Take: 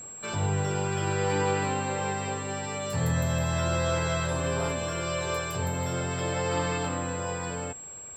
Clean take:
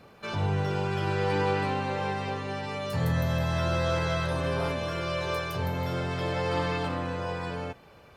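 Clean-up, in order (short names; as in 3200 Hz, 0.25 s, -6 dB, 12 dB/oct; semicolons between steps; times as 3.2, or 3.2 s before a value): notch 7600 Hz, Q 30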